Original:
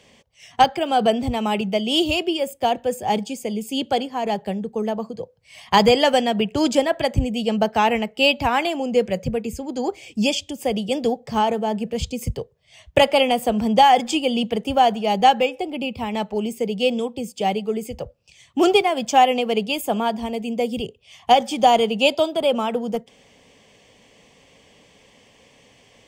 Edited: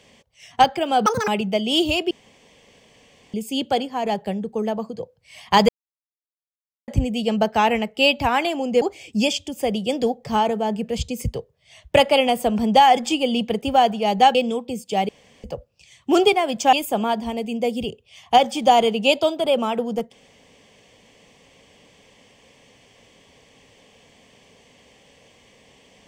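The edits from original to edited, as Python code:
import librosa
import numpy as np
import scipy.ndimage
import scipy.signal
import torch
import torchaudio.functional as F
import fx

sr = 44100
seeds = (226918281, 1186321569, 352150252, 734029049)

y = fx.edit(x, sr, fx.speed_span(start_s=1.06, length_s=0.42, speed=1.93),
    fx.room_tone_fill(start_s=2.31, length_s=1.23),
    fx.silence(start_s=5.89, length_s=1.19),
    fx.cut(start_s=9.02, length_s=0.82),
    fx.cut(start_s=15.37, length_s=1.46),
    fx.room_tone_fill(start_s=17.57, length_s=0.35),
    fx.cut(start_s=19.21, length_s=0.48), tone=tone)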